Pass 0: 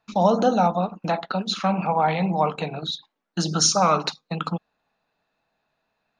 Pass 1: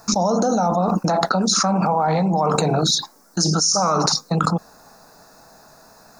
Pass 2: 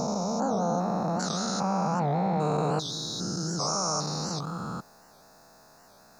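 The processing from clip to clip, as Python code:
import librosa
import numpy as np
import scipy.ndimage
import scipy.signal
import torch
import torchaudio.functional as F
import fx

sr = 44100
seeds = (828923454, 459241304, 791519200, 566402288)

y1 = fx.curve_eq(x, sr, hz=(1400.0, 3100.0, 5200.0), db=(0, -19, 12))
y1 = fx.env_flatten(y1, sr, amount_pct=100)
y1 = y1 * librosa.db_to_amplitude(-13.5)
y2 = fx.spec_steps(y1, sr, hold_ms=400)
y2 = fx.record_warp(y2, sr, rpm=78.0, depth_cents=160.0)
y2 = y2 * librosa.db_to_amplitude(-5.5)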